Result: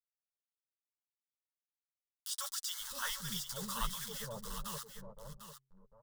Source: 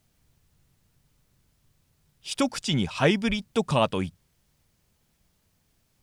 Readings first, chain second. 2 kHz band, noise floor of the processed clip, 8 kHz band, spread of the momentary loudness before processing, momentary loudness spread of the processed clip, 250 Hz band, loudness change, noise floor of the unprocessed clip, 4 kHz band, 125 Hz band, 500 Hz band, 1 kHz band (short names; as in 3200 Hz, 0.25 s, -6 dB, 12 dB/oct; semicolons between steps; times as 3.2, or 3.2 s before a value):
-13.5 dB, under -85 dBFS, 0.0 dB, 12 LU, 14 LU, -22.5 dB, -13.5 dB, -70 dBFS, -8.5 dB, -19.0 dB, -22.5 dB, -13.0 dB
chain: reverse delay 0.608 s, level -7 dB; bit-crush 6-bit; bands offset in time highs, lows 0.52 s, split 710 Hz; upward compressor, threshold -28 dBFS; low shelf 72 Hz +9 dB; transient shaper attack -7 dB, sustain -1 dB; flange 1.5 Hz, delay 4.8 ms, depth 5.9 ms, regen -13%; passive tone stack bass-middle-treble 10-0-10; fixed phaser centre 480 Hz, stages 8; de-hum 134 Hz, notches 3; on a send: echo 0.749 s -9.5 dB; on the sum: gain +3 dB